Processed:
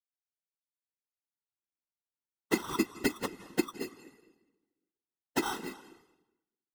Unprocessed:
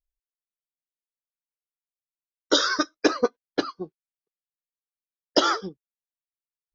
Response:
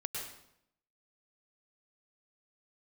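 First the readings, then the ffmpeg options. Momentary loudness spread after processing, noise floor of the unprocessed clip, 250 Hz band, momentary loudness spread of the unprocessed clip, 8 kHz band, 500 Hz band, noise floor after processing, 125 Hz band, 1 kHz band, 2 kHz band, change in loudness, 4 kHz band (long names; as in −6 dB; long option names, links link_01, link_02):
11 LU, below −85 dBFS, −5.0 dB, 17 LU, can't be measured, −11.0 dB, below −85 dBFS, +0.5 dB, −11.0 dB, −9.0 dB, −10.0 dB, −15.5 dB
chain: -filter_complex "[0:a]asubboost=boost=11:cutoff=51,asplit=3[link_01][link_02][link_03];[link_01]bandpass=frequency=300:width_type=q:width=8,volume=0dB[link_04];[link_02]bandpass=frequency=870:width_type=q:width=8,volume=-6dB[link_05];[link_03]bandpass=frequency=2240:width_type=q:width=8,volume=-9dB[link_06];[link_04][link_05][link_06]amix=inputs=3:normalize=0,acrusher=samples=19:mix=1:aa=0.000001,tiltshelf=frequency=640:gain=-3,acompressor=threshold=-37dB:ratio=4,asplit=2[link_07][link_08];[1:a]atrim=start_sample=2205,asetrate=27342,aresample=44100[link_09];[link_08][link_09]afir=irnorm=-1:irlink=0,volume=-15.5dB[link_10];[link_07][link_10]amix=inputs=2:normalize=0,afftfilt=real='hypot(re,im)*cos(2*PI*random(0))':imag='hypot(re,im)*sin(2*PI*random(1))':win_size=512:overlap=0.75,dynaudnorm=framelen=460:gausssize=5:maxgain=14.5dB"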